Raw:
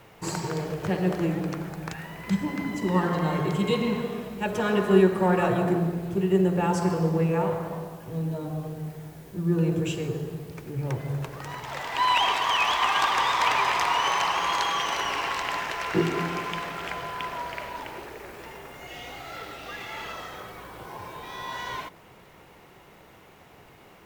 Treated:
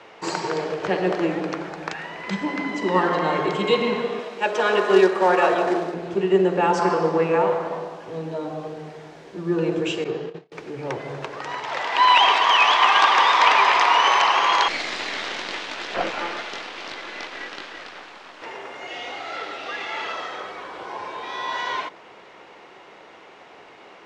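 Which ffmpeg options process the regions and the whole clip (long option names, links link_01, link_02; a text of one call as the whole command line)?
ffmpeg -i in.wav -filter_complex "[0:a]asettb=1/sr,asplit=3[link_01][link_02][link_03];[link_01]atrim=end=4.194[link_04];[link_02]atrim=start=4.19:end=5.94,asetpts=PTS-STARTPTS,afade=type=in:duration=0.004:curve=qsin,afade=type=out:start_time=1.746:duration=0.004:curve=qsin,bass=frequency=250:gain=-11,treble=frequency=4000:gain=2,acrusher=bits=5:mode=log:mix=0:aa=0.000001[link_05];[link_03]atrim=start=5.936[link_06];[link_04][link_05]acrossfade=duration=0.004:curve1=hsin:curve2=qsin[link_07];[link_07][link_06]acrossfade=duration=0.004:curve1=qsin:curve2=hsin,asettb=1/sr,asplit=3[link_08][link_09][link_10];[link_08]atrim=end=6.794[link_11];[link_09]atrim=start=6.79:end=7.36,asetpts=PTS-STARTPTS,afade=type=in:duration=0.004:curve=qsin,afade=type=out:start_time=0.566:duration=0.004:curve=qsin,highpass=110,equalizer=frequency=1200:width_type=o:width=1.1:gain=5[link_12];[link_10]atrim=start=7.356[link_13];[link_11][link_12]acrossfade=duration=0.004:curve1=hsin:curve2=qsin[link_14];[link_14][link_13]acrossfade=duration=0.004:curve1=qsin:curve2=hsin,asettb=1/sr,asplit=3[link_15][link_16][link_17];[link_15]atrim=end=10.044[link_18];[link_16]atrim=start=10.04:end=10.52,asetpts=PTS-STARTPTS,afade=type=in:duration=0.004:curve=qsin,afade=type=out:start_time=0.476:duration=0.004:curve=qsin,agate=range=-32dB:threshold=-35dB:ratio=16:release=100:detection=peak,highpass=110,lowpass=4600,asplit=2[link_19][link_20];[link_20]adelay=30,volume=-9dB[link_21];[link_19][link_21]amix=inputs=2:normalize=0,atrim=end_sample=21168[link_22];[link_17]atrim=start=10.516[link_23];[link_18][link_22]acrossfade=duration=0.004:curve1=hsin:curve2=qsin[link_24];[link_24][link_23]acrossfade=duration=0.004:curve1=qsin:curve2=hsin,asettb=1/sr,asplit=3[link_25][link_26][link_27];[link_25]atrim=end=14.684[link_28];[link_26]atrim=start=14.68:end=18.42,asetpts=PTS-STARTPTS,afade=type=in:duration=0.004:curve=qsin,afade=type=out:start_time=3.736:duration=0.004:curve=qsin,flanger=delay=20:depth=3.7:speed=1,aeval=exprs='abs(val(0))':channel_layout=same[link_29];[link_27]atrim=start=18.416[link_30];[link_28][link_29]acrossfade=duration=0.004:curve1=hsin:curve2=qsin[link_31];[link_31][link_30]acrossfade=duration=0.004:curve1=qsin:curve2=hsin,lowpass=8800,acrossover=split=270 6500:gain=0.0891 1 0.0708[link_32][link_33][link_34];[link_32][link_33][link_34]amix=inputs=3:normalize=0,volume=7.5dB" out.wav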